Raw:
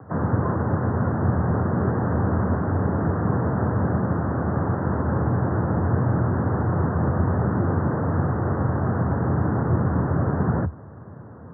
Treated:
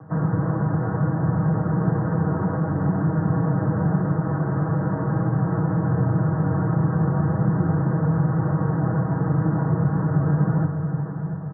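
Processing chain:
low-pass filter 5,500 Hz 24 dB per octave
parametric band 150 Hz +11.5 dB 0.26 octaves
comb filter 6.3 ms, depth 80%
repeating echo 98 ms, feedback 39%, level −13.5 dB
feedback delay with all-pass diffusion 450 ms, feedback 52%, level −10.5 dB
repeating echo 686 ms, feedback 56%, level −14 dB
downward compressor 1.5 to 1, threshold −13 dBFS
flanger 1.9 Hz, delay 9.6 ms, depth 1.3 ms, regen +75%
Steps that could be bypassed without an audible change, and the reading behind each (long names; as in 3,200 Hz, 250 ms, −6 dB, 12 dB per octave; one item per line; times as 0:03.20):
low-pass filter 5,500 Hz: nothing at its input above 1,500 Hz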